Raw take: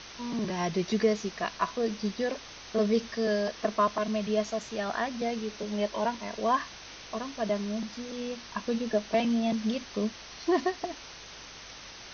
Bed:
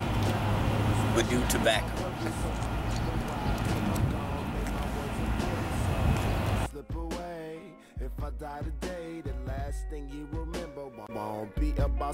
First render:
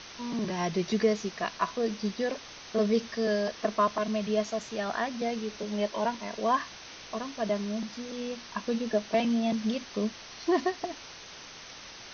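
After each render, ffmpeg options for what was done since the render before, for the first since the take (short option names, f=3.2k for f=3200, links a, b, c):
-af "bandreject=f=50:t=h:w=4,bandreject=f=100:t=h:w=4,bandreject=f=150:t=h:w=4"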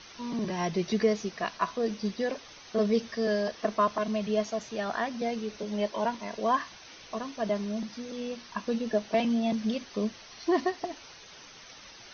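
-af "afftdn=nr=8:nf=-47"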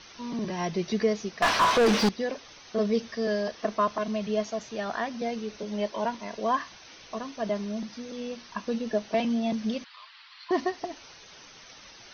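-filter_complex "[0:a]asettb=1/sr,asplit=3[a][b][c];[a]atrim=end=1.424[d];[b]atrim=start=1.42:end=2.09,asetpts=PTS-STARTPTS,afade=t=in:d=0.004:c=qsin,afade=t=out:st=0.666:d=0.004:c=qsin,asplit=2[e][f];[f]highpass=f=720:p=1,volume=37dB,asoftclip=type=tanh:threshold=-13dB[g];[e][g]amix=inputs=2:normalize=0,lowpass=f=2.2k:p=1,volume=-6dB[h];[c]atrim=start=2.086[i];[d][h]acrossfade=d=0.004:c1=hsin:c2=qsin[j];[j][i]acrossfade=d=0.004:c1=qsin:c2=hsin,asettb=1/sr,asplit=3[k][l][m];[k]atrim=end=9.844[n];[l]atrim=start=9.84:end=10.51,asetpts=PTS-STARTPTS,afade=t=in:d=0.004:c=qsin,afade=t=out:st=0.666:d=0.004:c=qsin,asuperpass=centerf=2100:order=12:qfactor=0.57[o];[m]atrim=start=10.506[p];[n][o]acrossfade=d=0.004:c1=hsin:c2=qsin[q];[q][p]acrossfade=d=0.004:c1=qsin:c2=hsin"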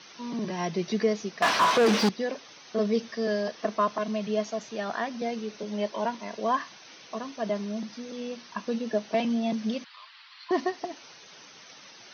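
-af "highpass=f=130:w=0.5412,highpass=f=130:w=1.3066"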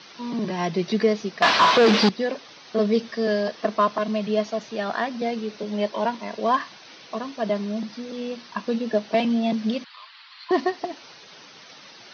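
-filter_complex "[0:a]asplit=2[a][b];[b]adynamicsmooth=sensitivity=5:basefreq=2.5k,volume=-2.5dB[c];[a][c]amix=inputs=2:normalize=0,lowpass=f=4.6k:t=q:w=1.8"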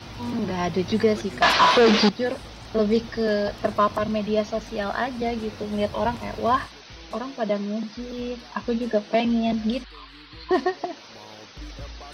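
-filter_complex "[1:a]volume=-10.5dB[a];[0:a][a]amix=inputs=2:normalize=0"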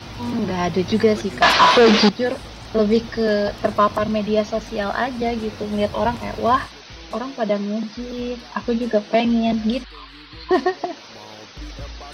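-af "volume=4dB"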